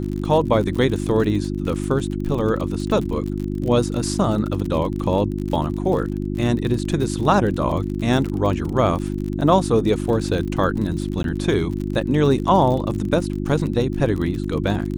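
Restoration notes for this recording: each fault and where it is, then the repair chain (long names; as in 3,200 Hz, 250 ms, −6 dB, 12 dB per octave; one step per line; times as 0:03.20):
surface crackle 47 per second −27 dBFS
mains hum 50 Hz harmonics 7 −25 dBFS
0:11.23–0:11.24: drop-out 12 ms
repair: click removal
hum removal 50 Hz, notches 7
repair the gap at 0:11.23, 12 ms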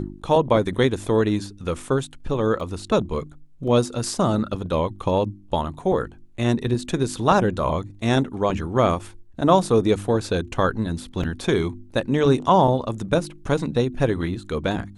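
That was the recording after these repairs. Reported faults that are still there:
none of them is left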